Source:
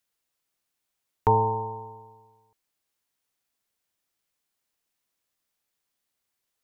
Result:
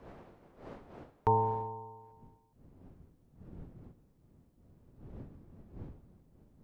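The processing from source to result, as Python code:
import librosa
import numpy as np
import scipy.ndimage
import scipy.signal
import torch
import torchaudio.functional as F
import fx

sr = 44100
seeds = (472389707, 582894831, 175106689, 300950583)

y = fx.dmg_wind(x, sr, seeds[0], corner_hz=fx.steps((0.0, 590.0), (2.11, 200.0)), level_db=-47.0)
y = y * 10.0 ** (-6.5 / 20.0)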